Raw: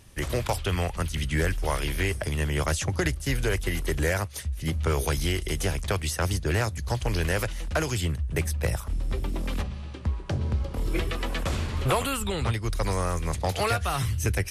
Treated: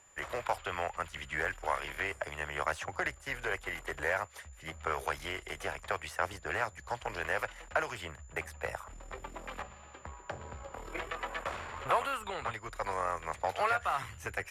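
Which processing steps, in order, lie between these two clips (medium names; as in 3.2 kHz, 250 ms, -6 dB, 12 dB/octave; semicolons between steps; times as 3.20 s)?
whistle 7.1 kHz -43 dBFS; Chebyshev shaper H 4 -21 dB, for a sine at -13.5 dBFS; three-band isolator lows -22 dB, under 580 Hz, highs -18 dB, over 2.2 kHz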